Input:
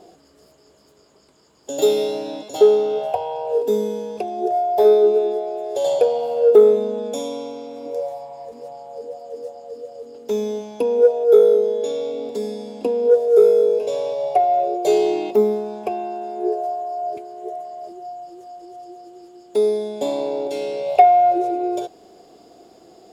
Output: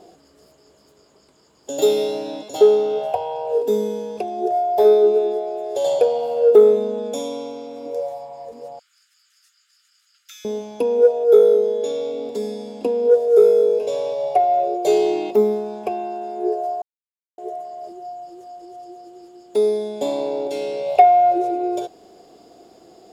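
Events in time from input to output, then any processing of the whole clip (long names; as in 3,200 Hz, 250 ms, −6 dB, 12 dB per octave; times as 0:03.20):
0:08.79–0:10.45: Butterworth high-pass 1,300 Hz 96 dB per octave
0:16.82–0:17.38: silence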